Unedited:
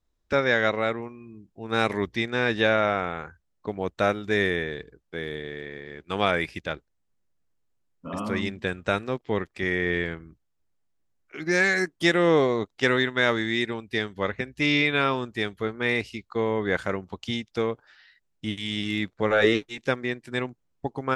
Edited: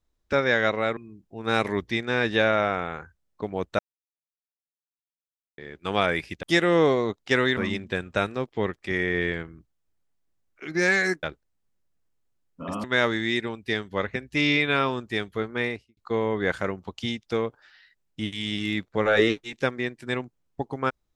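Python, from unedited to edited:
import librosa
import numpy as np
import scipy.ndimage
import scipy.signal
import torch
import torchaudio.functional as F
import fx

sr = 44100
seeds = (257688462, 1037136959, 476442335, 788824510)

y = fx.studio_fade_out(x, sr, start_s=15.78, length_s=0.44)
y = fx.edit(y, sr, fx.cut(start_s=0.97, length_s=0.25),
    fx.silence(start_s=4.04, length_s=1.79),
    fx.swap(start_s=6.68, length_s=1.61, other_s=11.95, other_length_s=1.14), tone=tone)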